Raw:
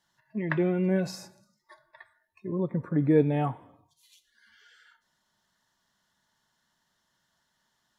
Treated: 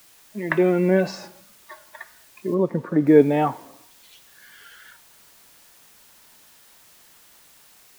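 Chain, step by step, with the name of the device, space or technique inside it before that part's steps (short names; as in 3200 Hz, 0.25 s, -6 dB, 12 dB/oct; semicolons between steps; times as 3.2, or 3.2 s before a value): dictaphone (BPF 250–3800 Hz; AGC gain up to 11.5 dB; wow and flutter; white noise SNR 28 dB); 2.54–3.07 high shelf 4300 Hz -11.5 dB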